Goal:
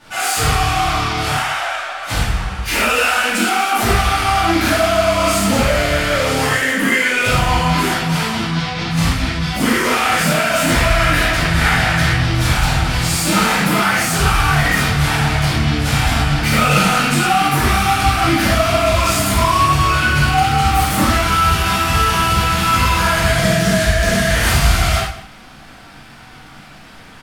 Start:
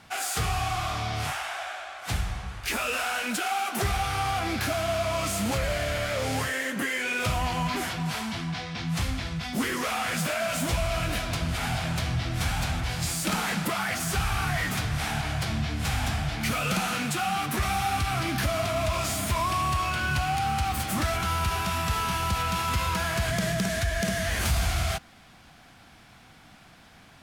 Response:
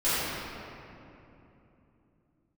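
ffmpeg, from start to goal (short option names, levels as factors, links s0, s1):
-filter_complex "[0:a]asettb=1/sr,asplit=3[s0][s1][s2];[s0]atrim=end=10.584[s3];[s1]atrim=start=10.58:end=12.13,asetpts=PTS-STARTPTS,afade=t=in:d=0.004:c=qsin,afade=t=out:st=1.546:d=0.004:c=qsin,equalizer=f=1800:t=o:w=0.51:g=9.5[s4];[s2]atrim=start=12.126[s5];[s3][s4]acrossfade=d=0.004:c1=hsin:c2=qsin[s6];[s6][s5]acrossfade=d=0.004:c1=qsin:c2=hsin,asplit=2[s7][s8];[s8]adelay=157.4,volume=0.2,highshelf=f=4000:g=-3.54[s9];[s7][s9]amix=inputs=2:normalize=0[s10];[1:a]atrim=start_sample=2205,afade=t=out:st=0.18:d=0.01,atrim=end_sample=8379,asetrate=42336,aresample=44100[s11];[s10][s11]afir=irnorm=-1:irlink=0,volume=1.19"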